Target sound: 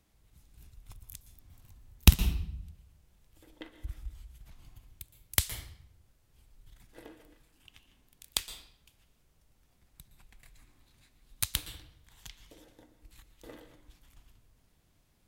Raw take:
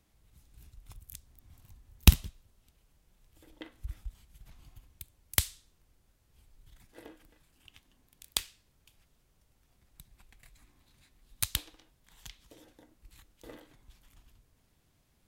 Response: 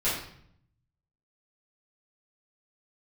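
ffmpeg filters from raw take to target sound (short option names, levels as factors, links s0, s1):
-filter_complex "[0:a]asplit=2[s0][s1];[1:a]atrim=start_sample=2205,adelay=113[s2];[s1][s2]afir=irnorm=-1:irlink=0,volume=0.0841[s3];[s0][s3]amix=inputs=2:normalize=0"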